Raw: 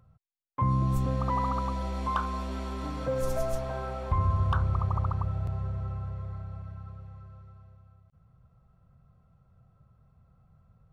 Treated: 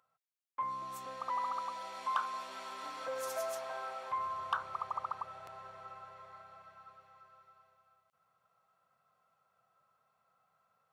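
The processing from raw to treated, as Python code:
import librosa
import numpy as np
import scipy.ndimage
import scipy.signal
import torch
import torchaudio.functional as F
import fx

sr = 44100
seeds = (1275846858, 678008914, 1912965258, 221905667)

y = scipy.signal.sosfilt(scipy.signal.butter(2, 860.0, 'highpass', fs=sr, output='sos'), x)
y = fx.rider(y, sr, range_db=4, speed_s=2.0)
y = y * librosa.db_to_amplitude(-2.0)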